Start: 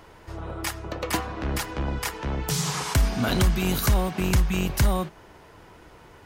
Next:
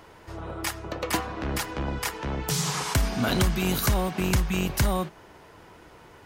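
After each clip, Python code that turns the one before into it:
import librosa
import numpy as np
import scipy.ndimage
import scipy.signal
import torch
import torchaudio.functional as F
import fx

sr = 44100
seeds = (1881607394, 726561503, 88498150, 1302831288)

y = fx.low_shelf(x, sr, hz=69.0, db=-7.0)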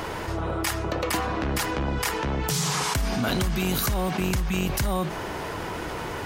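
y = fx.env_flatten(x, sr, amount_pct=70)
y = y * 10.0 ** (-4.0 / 20.0)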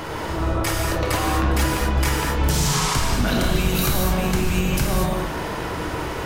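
y = fx.octave_divider(x, sr, octaves=2, level_db=-2.0)
y = y + 10.0 ** (-21.0 / 20.0) * np.pad(y, (int(407 * sr / 1000.0), 0))[:len(y)]
y = fx.rev_gated(y, sr, seeds[0], gate_ms=270, shape='flat', drr_db=-2.0)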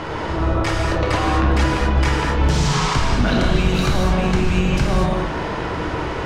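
y = fx.air_absorb(x, sr, metres=110.0)
y = y * 10.0 ** (3.5 / 20.0)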